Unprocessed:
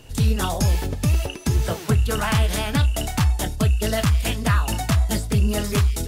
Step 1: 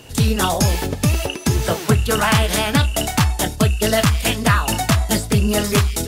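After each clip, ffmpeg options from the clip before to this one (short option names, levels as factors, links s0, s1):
-af "highpass=f=150:p=1,aeval=exprs='0.316*(cos(1*acos(clip(val(0)/0.316,-1,1)))-cos(1*PI/2))+0.00501*(cos(3*acos(clip(val(0)/0.316,-1,1)))-cos(3*PI/2))':c=same,volume=2.37"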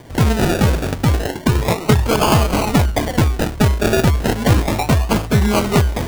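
-af "acrusher=samples=33:mix=1:aa=0.000001:lfo=1:lforange=19.8:lforate=0.33,volume=1.26"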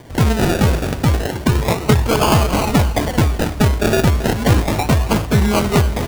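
-af "aecho=1:1:273|546|819|1092|1365:0.178|0.0978|0.0538|0.0296|0.0163"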